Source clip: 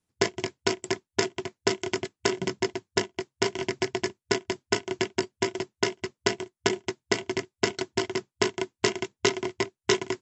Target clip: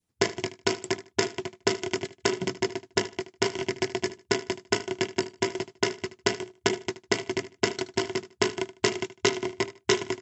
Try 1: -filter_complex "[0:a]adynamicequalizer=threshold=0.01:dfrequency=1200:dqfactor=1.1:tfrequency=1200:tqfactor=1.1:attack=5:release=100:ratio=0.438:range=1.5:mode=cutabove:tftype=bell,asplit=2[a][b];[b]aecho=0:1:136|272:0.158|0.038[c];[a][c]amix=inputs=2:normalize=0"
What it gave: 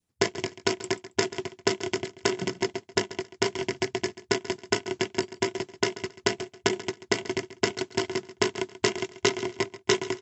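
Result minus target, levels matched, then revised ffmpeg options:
echo 60 ms late
-filter_complex "[0:a]adynamicequalizer=threshold=0.01:dfrequency=1200:dqfactor=1.1:tfrequency=1200:tqfactor=1.1:attack=5:release=100:ratio=0.438:range=1.5:mode=cutabove:tftype=bell,asplit=2[a][b];[b]aecho=0:1:76|152:0.158|0.038[c];[a][c]amix=inputs=2:normalize=0"

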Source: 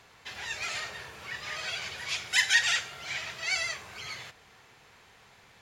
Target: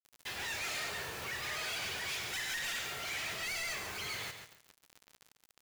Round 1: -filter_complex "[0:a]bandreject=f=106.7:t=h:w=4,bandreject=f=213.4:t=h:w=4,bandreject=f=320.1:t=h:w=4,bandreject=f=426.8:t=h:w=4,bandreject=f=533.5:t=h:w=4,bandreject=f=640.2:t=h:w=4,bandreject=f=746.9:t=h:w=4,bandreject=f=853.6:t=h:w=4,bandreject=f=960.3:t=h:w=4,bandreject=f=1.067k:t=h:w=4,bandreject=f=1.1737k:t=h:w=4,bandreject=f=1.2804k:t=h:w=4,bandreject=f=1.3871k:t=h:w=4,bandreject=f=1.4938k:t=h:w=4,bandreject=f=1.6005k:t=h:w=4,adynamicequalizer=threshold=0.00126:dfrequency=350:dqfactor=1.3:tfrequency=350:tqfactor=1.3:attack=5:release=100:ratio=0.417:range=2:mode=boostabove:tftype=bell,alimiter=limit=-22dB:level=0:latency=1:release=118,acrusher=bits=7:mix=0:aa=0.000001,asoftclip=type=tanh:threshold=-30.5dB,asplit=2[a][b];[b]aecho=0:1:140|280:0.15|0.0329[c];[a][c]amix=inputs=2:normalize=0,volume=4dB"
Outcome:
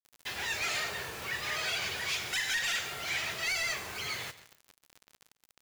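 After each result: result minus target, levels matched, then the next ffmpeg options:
echo-to-direct -8.5 dB; soft clip: distortion -8 dB
-filter_complex "[0:a]bandreject=f=106.7:t=h:w=4,bandreject=f=213.4:t=h:w=4,bandreject=f=320.1:t=h:w=4,bandreject=f=426.8:t=h:w=4,bandreject=f=533.5:t=h:w=4,bandreject=f=640.2:t=h:w=4,bandreject=f=746.9:t=h:w=4,bandreject=f=853.6:t=h:w=4,bandreject=f=960.3:t=h:w=4,bandreject=f=1.067k:t=h:w=4,bandreject=f=1.1737k:t=h:w=4,bandreject=f=1.2804k:t=h:w=4,bandreject=f=1.3871k:t=h:w=4,bandreject=f=1.4938k:t=h:w=4,bandreject=f=1.6005k:t=h:w=4,adynamicequalizer=threshold=0.00126:dfrequency=350:dqfactor=1.3:tfrequency=350:tqfactor=1.3:attack=5:release=100:ratio=0.417:range=2:mode=boostabove:tftype=bell,alimiter=limit=-22dB:level=0:latency=1:release=118,acrusher=bits=7:mix=0:aa=0.000001,asoftclip=type=tanh:threshold=-30.5dB,asplit=2[a][b];[b]aecho=0:1:140|280|420:0.398|0.0876|0.0193[c];[a][c]amix=inputs=2:normalize=0,volume=4dB"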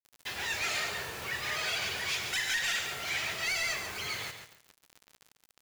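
soft clip: distortion -8 dB
-filter_complex "[0:a]bandreject=f=106.7:t=h:w=4,bandreject=f=213.4:t=h:w=4,bandreject=f=320.1:t=h:w=4,bandreject=f=426.8:t=h:w=4,bandreject=f=533.5:t=h:w=4,bandreject=f=640.2:t=h:w=4,bandreject=f=746.9:t=h:w=4,bandreject=f=853.6:t=h:w=4,bandreject=f=960.3:t=h:w=4,bandreject=f=1.067k:t=h:w=4,bandreject=f=1.1737k:t=h:w=4,bandreject=f=1.2804k:t=h:w=4,bandreject=f=1.3871k:t=h:w=4,bandreject=f=1.4938k:t=h:w=4,bandreject=f=1.6005k:t=h:w=4,adynamicequalizer=threshold=0.00126:dfrequency=350:dqfactor=1.3:tfrequency=350:tqfactor=1.3:attack=5:release=100:ratio=0.417:range=2:mode=boostabove:tftype=bell,alimiter=limit=-22dB:level=0:latency=1:release=118,acrusher=bits=7:mix=0:aa=0.000001,asoftclip=type=tanh:threshold=-40.5dB,asplit=2[a][b];[b]aecho=0:1:140|280|420:0.398|0.0876|0.0193[c];[a][c]amix=inputs=2:normalize=0,volume=4dB"

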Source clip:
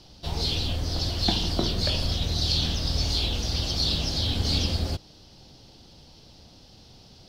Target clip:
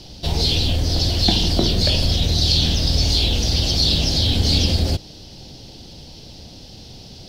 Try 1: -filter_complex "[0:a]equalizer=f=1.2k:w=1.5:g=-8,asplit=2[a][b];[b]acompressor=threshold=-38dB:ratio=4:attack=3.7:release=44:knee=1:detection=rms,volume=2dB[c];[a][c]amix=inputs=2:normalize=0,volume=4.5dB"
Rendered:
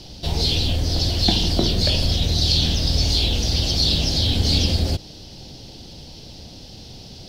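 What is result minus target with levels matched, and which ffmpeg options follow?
compressor: peak gain reduction +5 dB
-filter_complex "[0:a]equalizer=f=1.2k:w=1.5:g=-8,asplit=2[a][b];[b]acompressor=threshold=-31dB:ratio=4:attack=3.7:release=44:knee=1:detection=rms,volume=2dB[c];[a][c]amix=inputs=2:normalize=0,volume=4.5dB"

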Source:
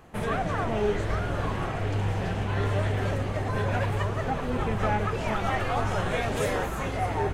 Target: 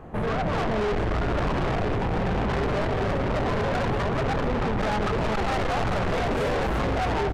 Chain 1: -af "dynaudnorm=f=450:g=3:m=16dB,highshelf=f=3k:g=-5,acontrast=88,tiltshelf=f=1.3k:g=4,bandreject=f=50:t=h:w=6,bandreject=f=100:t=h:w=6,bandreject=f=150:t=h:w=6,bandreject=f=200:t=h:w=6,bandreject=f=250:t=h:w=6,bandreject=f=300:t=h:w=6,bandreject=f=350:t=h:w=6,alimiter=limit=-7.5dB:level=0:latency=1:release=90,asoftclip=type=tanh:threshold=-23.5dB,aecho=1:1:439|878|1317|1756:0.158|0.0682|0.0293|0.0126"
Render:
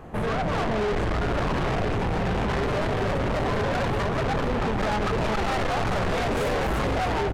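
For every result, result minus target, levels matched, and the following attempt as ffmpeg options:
echo 0.167 s late; 8000 Hz band +3.0 dB
-af "dynaudnorm=f=450:g=3:m=16dB,highshelf=f=3k:g=-5,acontrast=88,tiltshelf=f=1.3k:g=4,bandreject=f=50:t=h:w=6,bandreject=f=100:t=h:w=6,bandreject=f=150:t=h:w=6,bandreject=f=200:t=h:w=6,bandreject=f=250:t=h:w=6,bandreject=f=300:t=h:w=6,bandreject=f=350:t=h:w=6,alimiter=limit=-7.5dB:level=0:latency=1:release=90,asoftclip=type=tanh:threshold=-23.5dB,aecho=1:1:272|544|816|1088:0.158|0.0682|0.0293|0.0126"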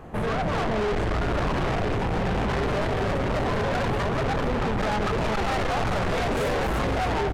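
8000 Hz band +3.0 dB
-af "dynaudnorm=f=450:g=3:m=16dB,highshelf=f=3k:g=-14,acontrast=88,tiltshelf=f=1.3k:g=4,bandreject=f=50:t=h:w=6,bandreject=f=100:t=h:w=6,bandreject=f=150:t=h:w=6,bandreject=f=200:t=h:w=6,bandreject=f=250:t=h:w=6,bandreject=f=300:t=h:w=6,bandreject=f=350:t=h:w=6,alimiter=limit=-7.5dB:level=0:latency=1:release=90,asoftclip=type=tanh:threshold=-23.5dB,aecho=1:1:272|544|816|1088:0.158|0.0682|0.0293|0.0126"

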